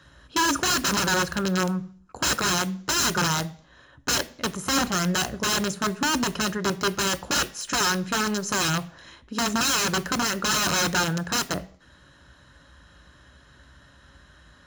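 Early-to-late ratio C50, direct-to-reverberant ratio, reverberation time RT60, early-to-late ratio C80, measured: 20.0 dB, 11.0 dB, 0.55 s, 23.0 dB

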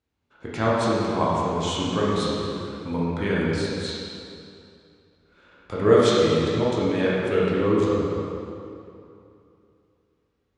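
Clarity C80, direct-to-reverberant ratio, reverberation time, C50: -1.5 dB, -7.0 dB, 2.7 s, -3.0 dB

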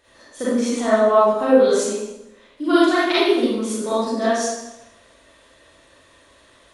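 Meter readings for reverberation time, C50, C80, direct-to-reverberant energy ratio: 0.90 s, -4.0 dB, 1.5 dB, -10.5 dB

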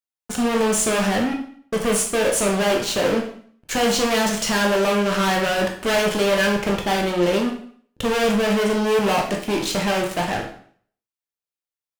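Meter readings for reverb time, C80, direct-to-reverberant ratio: 0.55 s, 10.5 dB, 0.5 dB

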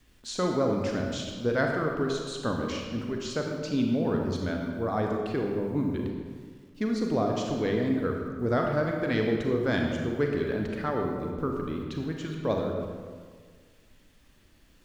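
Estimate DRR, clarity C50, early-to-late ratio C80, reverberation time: 1.0 dB, 2.0 dB, 4.0 dB, 1.7 s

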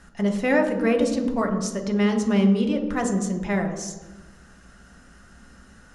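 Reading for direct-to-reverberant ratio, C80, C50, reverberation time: 2.5 dB, 9.0 dB, 7.0 dB, 1.2 s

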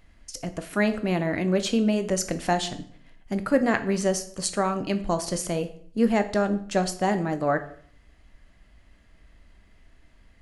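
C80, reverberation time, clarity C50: 17.5 dB, 0.55 s, 14.0 dB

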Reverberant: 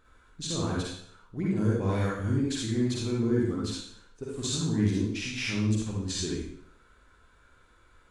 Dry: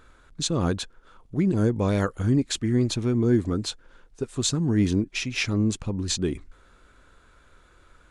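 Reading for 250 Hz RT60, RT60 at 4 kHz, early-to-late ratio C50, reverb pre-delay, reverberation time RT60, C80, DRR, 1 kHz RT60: 0.60 s, 0.60 s, -3.0 dB, 39 ms, 0.65 s, 3.5 dB, -5.0 dB, 0.65 s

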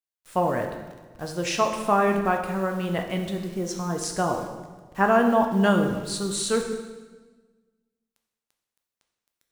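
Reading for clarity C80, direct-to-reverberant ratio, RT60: 7.5 dB, 3.0 dB, 1.4 s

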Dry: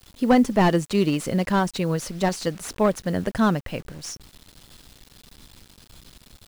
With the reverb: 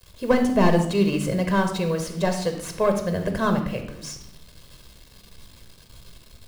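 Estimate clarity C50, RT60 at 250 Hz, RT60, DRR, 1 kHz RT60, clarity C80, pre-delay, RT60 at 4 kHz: 8.0 dB, 1.1 s, 0.75 s, 5.5 dB, 0.65 s, 11.0 dB, 16 ms, 0.60 s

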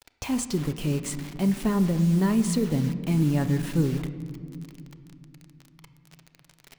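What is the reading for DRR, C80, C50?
9.0 dB, 13.0 dB, 12.0 dB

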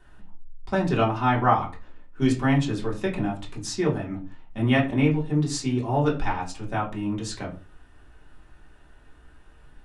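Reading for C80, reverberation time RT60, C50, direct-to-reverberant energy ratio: 16.5 dB, not exponential, 12.0 dB, -4.5 dB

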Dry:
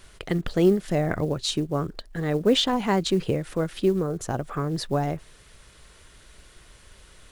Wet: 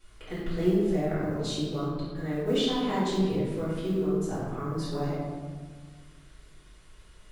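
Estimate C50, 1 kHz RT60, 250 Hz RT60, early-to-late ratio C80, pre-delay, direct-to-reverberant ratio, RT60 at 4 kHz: -1.5 dB, 1.5 s, 2.2 s, 1.0 dB, 4 ms, -11.5 dB, 1.0 s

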